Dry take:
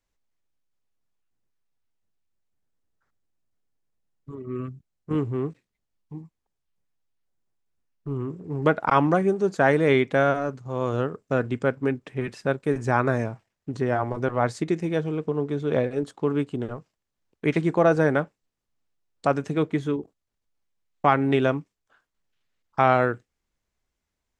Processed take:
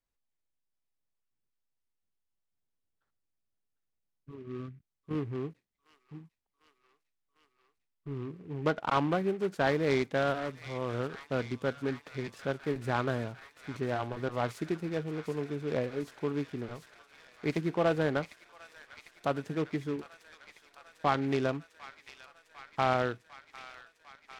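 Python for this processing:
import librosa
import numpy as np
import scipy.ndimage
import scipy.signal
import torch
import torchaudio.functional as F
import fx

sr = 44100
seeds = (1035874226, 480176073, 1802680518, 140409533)

p1 = x + fx.echo_wet_highpass(x, sr, ms=750, feedback_pct=80, hz=2300.0, wet_db=-7.0, dry=0)
p2 = fx.noise_mod_delay(p1, sr, seeds[0], noise_hz=1700.0, depth_ms=0.033)
y = F.gain(torch.from_numpy(p2), -8.5).numpy()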